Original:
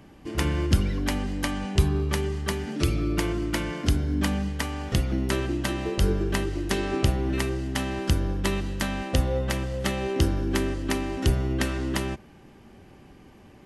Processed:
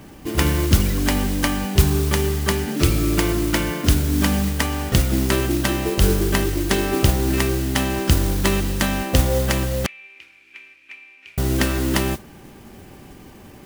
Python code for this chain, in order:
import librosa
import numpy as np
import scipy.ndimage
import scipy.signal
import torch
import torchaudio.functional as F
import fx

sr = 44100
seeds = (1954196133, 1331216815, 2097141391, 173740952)

p1 = fx.rider(x, sr, range_db=4, speed_s=0.5)
p2 = x + (p1 * 10.0 ** (2.5 / 20.0))
p3 = fx.mod_noise(p2, sr, seeds[0], snr_db=13)
p4 = fx.bandpass_q(p3, sr, hz=2400.0, q=19.0, at=(9.86, 11.38))
y = p4 * 10.0 ** (-1.0 / 20.0)